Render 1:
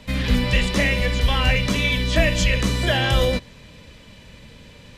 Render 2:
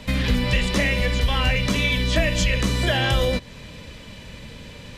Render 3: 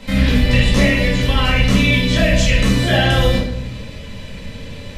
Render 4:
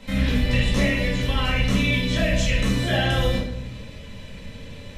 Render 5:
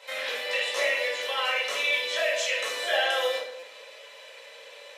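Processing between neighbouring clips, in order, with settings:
compression 2:1, threshold -27 dBFS, peak gain reduction 8.5 dB; trim +5 dB
simulated room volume 190 m³, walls mixed, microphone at 2.1 m; trim -2 dB
band-stop 4.7 kHz, Q 15; trim -7 dB
elliptic high-pass 500 Hz, stop band 80 dB; buffer glitch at 3.59 s, samples 256, times 5

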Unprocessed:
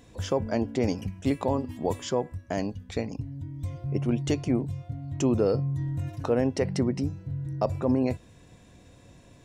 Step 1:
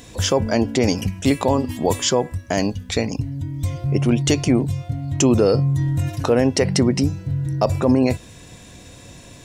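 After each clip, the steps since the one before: treble shelf 2.3 kHz +9 dB; in parallel at +2.5 dB: peak limiter -18.5 dBFS, peak gain reduction 7.5 dB; on the sum: trim +2.5 dB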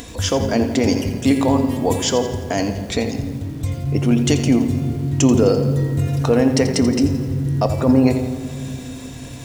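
upward compressor, threshold -29 dBFS; on a send at -8 dB: reverberation RT60 2.6 s, pre-delay 3 ms; on the sum: bit-crushed delay 85 ms, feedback 55%, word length 6-bit, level -11 dB; trim -1 dB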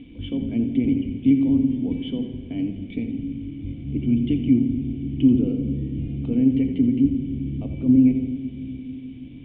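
octave divider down 1 oct, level -2 dB; word length cut 6-bit, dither none; cascade formant filter i

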